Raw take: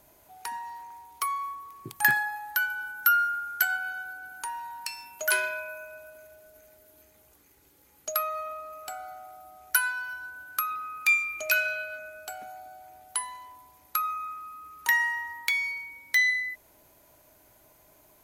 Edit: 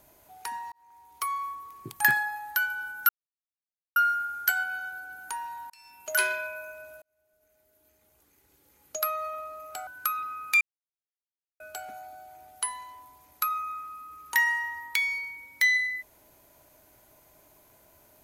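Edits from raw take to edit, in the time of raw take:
0:00.72–0:01.35: fade in linear
0:03.09: splice in silence 0.87 s
0:04.83–0:05.31: fade in
0:06.15–0:08.32: fade in
0:09.00–0:10.40: remove
0:11.14–0:12.13: silence

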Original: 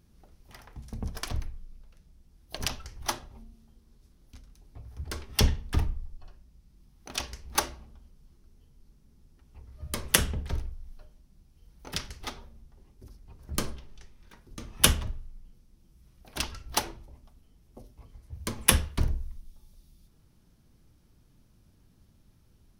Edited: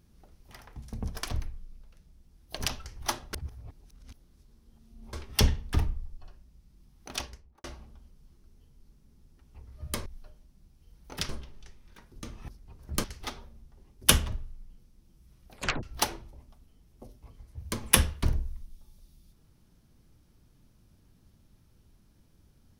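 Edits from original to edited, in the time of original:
0:03.33–0:05.13: reverse
0:07.09–0:07.64: fade out and dull
0:10.06–0:10.81: remove
0:12.04–0:13.08: swap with 0:13.64–0:14.83
0:16.30: tape stop 0.28 s

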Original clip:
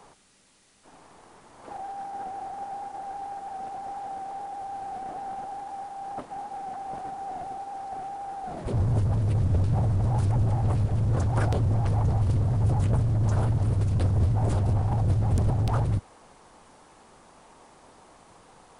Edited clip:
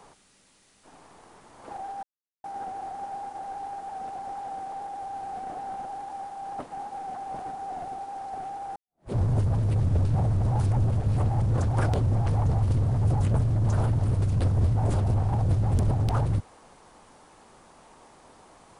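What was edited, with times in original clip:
0:02.03: splice in silence 0.41 s
0:08.35–0:08.71: fade in exponential
0:10.50–0:11.01: reverse

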